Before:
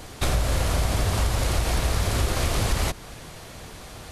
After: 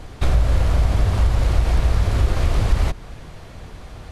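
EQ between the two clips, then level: low-pass 2.7 kHz 6 dB/octave; bass shelf 100 Hz +10 dB; 0.0 dB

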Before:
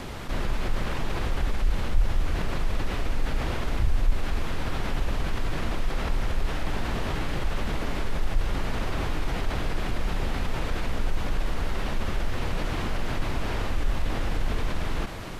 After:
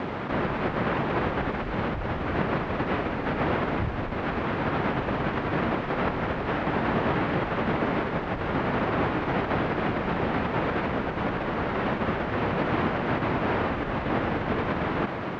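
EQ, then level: band-pass 150–2000 Hz; distance through air 55 m; +8.5 dB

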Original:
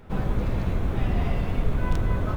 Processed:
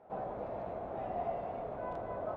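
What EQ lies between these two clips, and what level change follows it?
band-pass filter 680 Hz, Q 4.1; +3.0 dB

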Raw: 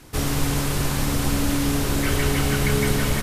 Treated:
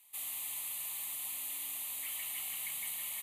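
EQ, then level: differentiator; bass shelf 270 Hz -7.5 dB; static phaser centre 1.5 kHz, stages 6; -6.0 dB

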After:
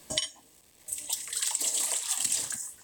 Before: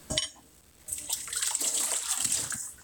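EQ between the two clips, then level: peaking EQ 62 Hz -3 dB 0.42 oct; bass shelf 250 Hz -9.5 dB; peaking EQ 1.4 kHz -13.5 dB 0.24 oct; 0.0 dB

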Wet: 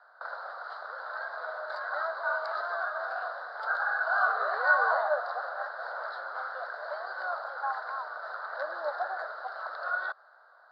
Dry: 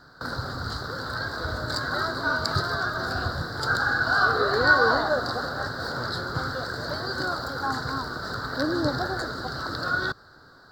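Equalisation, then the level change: elliptic high-pass 630 Hz, stop band 60 dB; distance through air 430 m; tilt shelf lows +5 dB, about 910 Hz; 0.0 dB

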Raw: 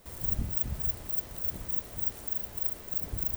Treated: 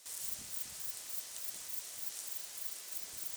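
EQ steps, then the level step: band-pass filter 6.9 kHz, Q 1.1; +10.0 dB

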